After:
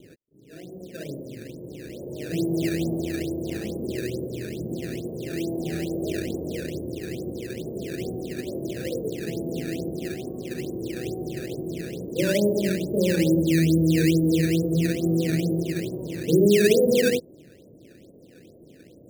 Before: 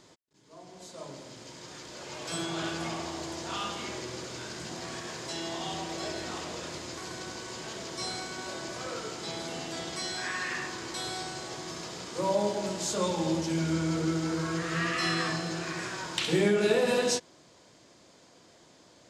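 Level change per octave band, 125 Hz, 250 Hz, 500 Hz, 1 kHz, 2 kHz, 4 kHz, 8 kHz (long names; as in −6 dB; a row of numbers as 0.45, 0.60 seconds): +10.5, +10.0, +7.5, −12.5, 0.0, −2.0, −0.5 decibels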